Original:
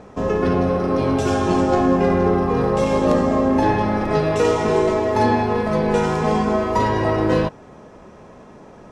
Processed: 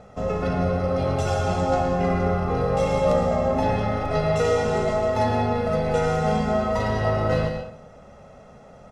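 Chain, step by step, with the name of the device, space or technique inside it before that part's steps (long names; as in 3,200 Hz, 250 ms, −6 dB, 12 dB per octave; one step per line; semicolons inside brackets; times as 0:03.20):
microphone above a desk (comb filter 1.5 ms, depth 71%; convolution reverb RT60 0.60 s, pre-delay 106 ms, DRR 6 dB)
level −6 dB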